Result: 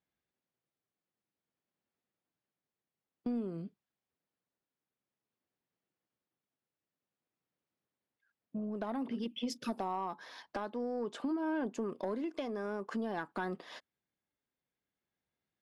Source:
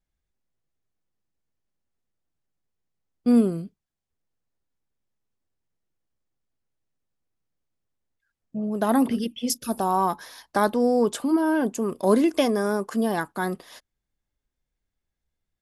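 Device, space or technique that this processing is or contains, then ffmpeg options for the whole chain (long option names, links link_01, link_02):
AM radio: -af "highpass=170,lowpass=3800,acompressor=threshold=-32dB:ratio=6,asoftclip=type=tanh:threshold=-24.5dB,tremolo=f=0.52:d=0.27"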